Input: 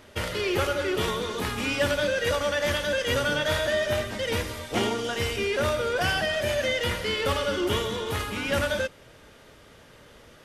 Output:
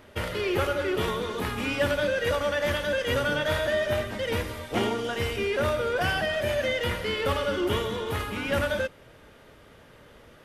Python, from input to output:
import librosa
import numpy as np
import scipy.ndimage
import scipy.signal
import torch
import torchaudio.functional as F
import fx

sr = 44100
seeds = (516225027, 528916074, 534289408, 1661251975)

y = fx.peak_eq(x, sr, hz=6300.0, db=-7.0, octaves=1.7)